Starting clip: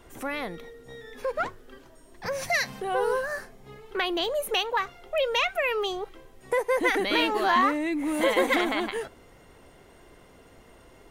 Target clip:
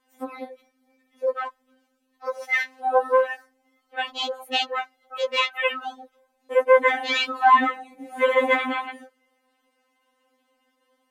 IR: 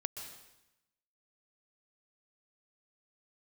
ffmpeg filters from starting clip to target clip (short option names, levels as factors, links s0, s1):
-filter_complex "[0:a]highpass=f=490:p=1,asplit=2[s0][s1];[1:a]atrim=start_sample=2205,asetrate=79380,aresample=44100[s2];[s1][s2]afir=irnorm=-1:irlink=0,volume=0.15[s3];[s0][s3]amix=inputs=2:normalize=0,afwtdn=0.0316,afftfilt=real='re*3.46*eq(mod(b,12),0)':imag='im*3.46*eq(mod(b,12),0)':win_size=2048:overlap=0.75,volume=1.88"